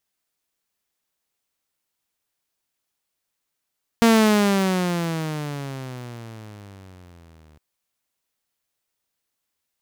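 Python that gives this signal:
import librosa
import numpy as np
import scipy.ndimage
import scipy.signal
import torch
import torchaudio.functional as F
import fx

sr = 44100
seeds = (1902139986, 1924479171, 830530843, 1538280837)

y = fx.riser_tone(sr, length_s=3.56, level_db=-9, wave='saw', hz=232.0, rise_st=-19.5, swell_db=-38)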